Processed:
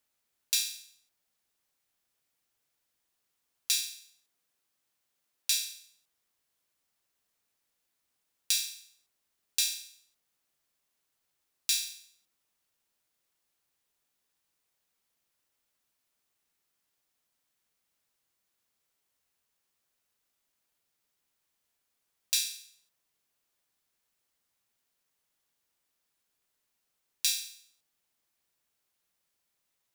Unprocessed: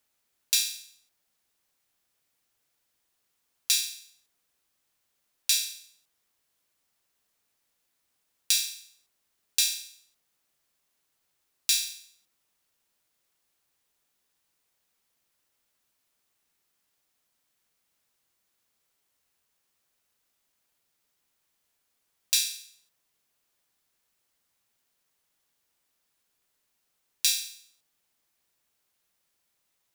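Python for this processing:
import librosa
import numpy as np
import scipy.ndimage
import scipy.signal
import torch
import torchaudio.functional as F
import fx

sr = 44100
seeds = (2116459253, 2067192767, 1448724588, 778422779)

y = fx.highpass(x, sr, hz=96.0, slope=12, at=(3.71, 5.71))
y = y * 10.0 ** (-4.0 / 20.0)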